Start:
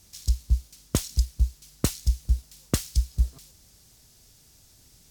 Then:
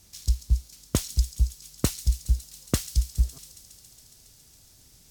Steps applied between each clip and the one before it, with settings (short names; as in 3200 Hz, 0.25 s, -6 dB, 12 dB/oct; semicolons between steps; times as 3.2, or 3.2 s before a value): thin delay 0.138 s, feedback 82%, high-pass 4200 Hz, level -11 dB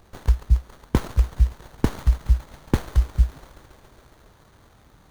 running maximum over 17 samples; gain +5 dB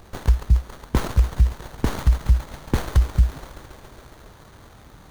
limiter -15 dBFS, peak gain reduction 9.5 dB; gain +7 dB